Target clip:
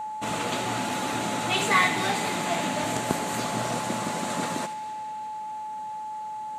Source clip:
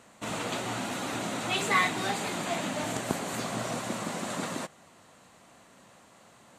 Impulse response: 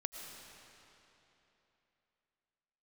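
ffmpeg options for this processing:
-filter_complex "[0:a]aeval=exprs='val(0)+0.02*sin(2*PI*860*n/s)':c=same,asplit=2[a][b];[b]highshelf=f=1.6k:t=q:w=1.5:g=6[c];[1:a]atrim=start_sample=2205,adelay=75[d];[c][d]afir=irnorm=-1:irlink=0,volume=-14dB[e];[a][e]amix=inputs=2:normalize=0,volume=3.5dB"

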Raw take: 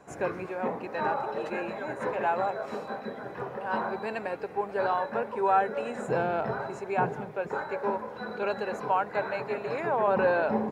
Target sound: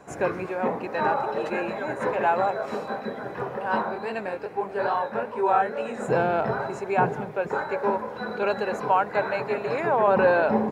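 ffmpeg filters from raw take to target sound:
-filter_complex "[0:a]asplit=3[a][b][c];[a]afade=t=out:st=3.81:d=0.02[d];[b]flanger=delay=17.5:depth=7.2:speed=2.4,afade=t=in:st=3.81:d=0.02,afade=t=out:st=6:d=0.02[e];[c]afade=t=in:st=6:d=0.02[f];[d][e][f]amix=inputs=3:normalize=0,volume=5dB"

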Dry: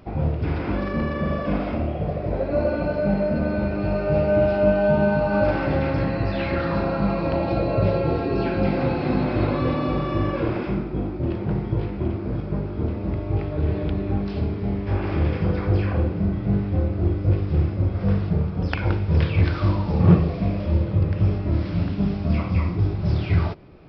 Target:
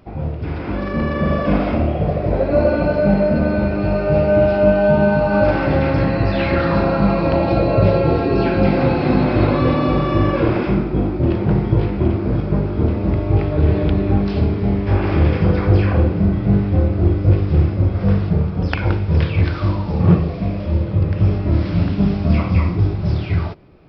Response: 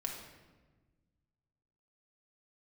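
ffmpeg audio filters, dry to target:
-af "dynaudnorm=f=120:g=17:m=11.5dB,volume=-1dB"

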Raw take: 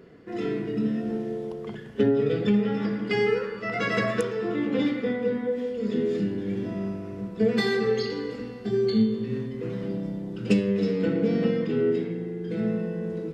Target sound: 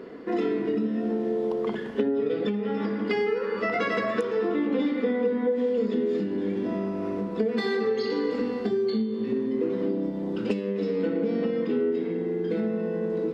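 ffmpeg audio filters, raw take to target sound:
-filter_complex "[0:a]asettb=1/sr,asplit=3[a][b][c];[a]atrim=end=9.324[d];[b]atrim=start=9.32:end=10.11,asetpts=PTS-STARTPTS,afade=t=in:d=0.004:c=qsin,afade=t=out:st=0.786:d=0.004:c=qsin,equalizer=f=330:w=1.6:g=8[e];[c]atrim=start=10.106[f];[d][e]acrossfade=d=0.004:c1=hsin:c2=qsin[g];[g][f]acrossfade=d=0.004:c1=qsin:c2=hsin,acompressor=threshold=-32dB:ratio=10,equalizer=f=125:t=o:w=1:g=-9,equalizer=f=250:t=o:w=1:g=11,equalizer=f=500:t=o:w=1:g=7,equalizer=f=1k:t=o:w=1:g=10,equalizer=f=2k:t=o:w=1:g=4,equalizer=f=4k:t=o:w=1:g=6"

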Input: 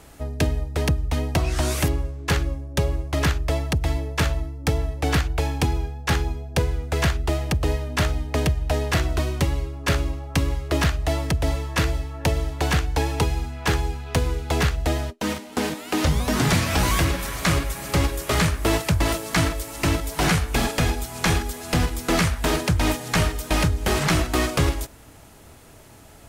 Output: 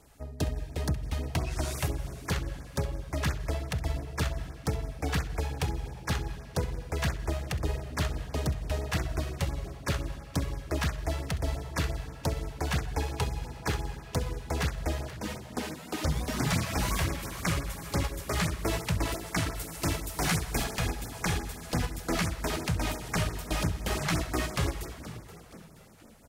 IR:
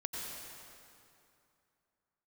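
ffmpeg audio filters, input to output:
-filter_complex "[0:a]asettb=1/sr,asplit=3[a][b][c];[a]atrim=end=19.554[d];[b]atrim=start=19.55:end=20.64,asetpts=PTS-STARTPTS,afade=t=in:d=0.004:c=qsin,afade=t=out:st=1.086:d=0.004:c=qsin,highshelf=f=5k:g=6[e];[c]atrim=start=20.636[f];[d][e]acrossfade=d=0.004:c1=hsin:c2=qsin[g];[g][f]acrossfade=d=0.004:c1=qsin:c2=hsin,aeval=exprs='0.398*(cos(1*acos(clip(val(0)/0.398,-1,1)))-cos(1*PI/2))+0.0158*(cos(7*acos(clip(val(0)/0.398,-1,1)))-cos(7*PI/2))':c=same,asplit=5[h][i][j][k][l];[i]adelay=475,afreqshift=52,volume=-15.5dB[m];[j]adelay=950,afreqshift=104,volume=-22.2dB[n];[k]adelay=1425,afreqshift=156,volume=-29dB[o];[l]adelay=1900,afreqshift=208,volume=-35.7dB[p];[h][m][n][o][p]amix=inputs=5:normalize=0,asplit=2[q][r];[1:a]atrim=start_sample=2205,adelay=66[s];[r][s]afir=irnorm=-1:irlink=0,volume=-14dB[t];[q][t]amix=inputs=2:normalize=0,afftfilt=real='re*(1-between(b*sr/1024,240*pow(3700/240,0.5+0.5*sin(2*PI*5.8*pts/sr))/1.41,240*pow(3700/240,0.5+0.5*sin(2*PI*5.8*pts/sr))*1.41))':imag='im*(1-between(b*sr/1024,240*pow(3700/240,0.5+0.5*sin(2*PI*5.8*pts/sr))/1.41,240*pow(3700/240,0.5+0.5*sin(2*PI*5.8*pts/sr))*1.41))':win_size=1024:overlap=0.75,volume=-8dB"

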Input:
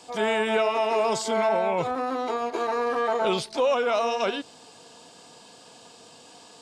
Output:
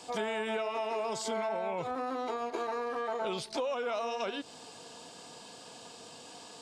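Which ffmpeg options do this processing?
-af "acompressor=threshold=-32dB:ratio=5"

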